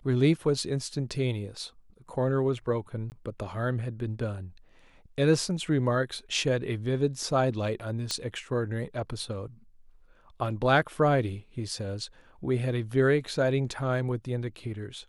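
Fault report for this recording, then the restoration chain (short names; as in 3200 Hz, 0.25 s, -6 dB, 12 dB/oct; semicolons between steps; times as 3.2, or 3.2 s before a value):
3.1–3.12 gap 19 ms
8.11 pop -15 dBFS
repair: de-click; interpolate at 3.1, 19 ms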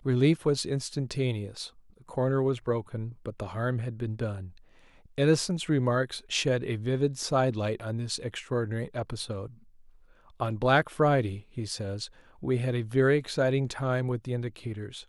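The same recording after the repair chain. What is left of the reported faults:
8.11 pop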